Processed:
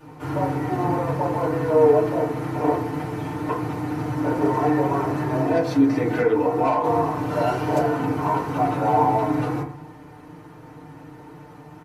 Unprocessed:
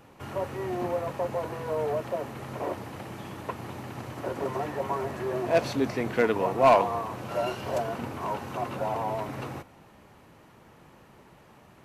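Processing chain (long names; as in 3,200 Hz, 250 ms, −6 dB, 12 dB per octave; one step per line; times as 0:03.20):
comb filter 6.6 ms, depth 48%
0:05.41–0:06.84: downward compressor 4 to 1, threshold −28 dBFS, peak gain reduction 12.5 dB
feedback delay network reverb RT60 0.47 s, low-frequency decay 1.3×, high-frequency decay 0.3×, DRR −8 dB
level −1.5 dB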